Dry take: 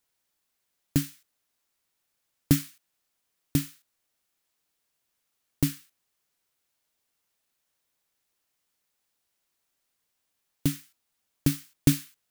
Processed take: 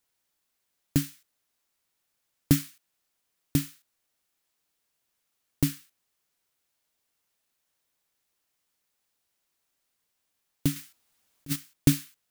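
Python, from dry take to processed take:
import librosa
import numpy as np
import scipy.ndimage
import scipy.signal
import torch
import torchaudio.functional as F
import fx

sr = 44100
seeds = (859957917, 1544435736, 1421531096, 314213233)

y = fx.over_compress(x, sr, threshold_db=-30.0, ratio=-0.5, at=(10.76, 11.56))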